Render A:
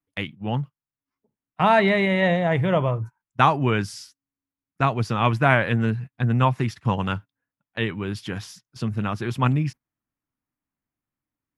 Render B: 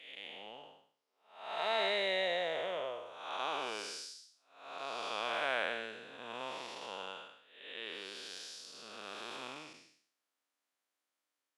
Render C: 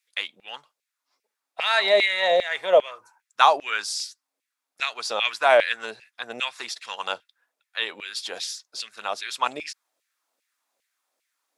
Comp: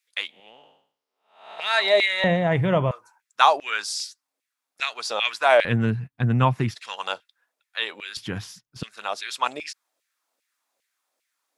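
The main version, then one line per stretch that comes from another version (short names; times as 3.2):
C
0.39–1.63 from B, crossfade 0.24 s
2.24–2.91 from A
5.65–6.75 from A
8.17–8.83 from A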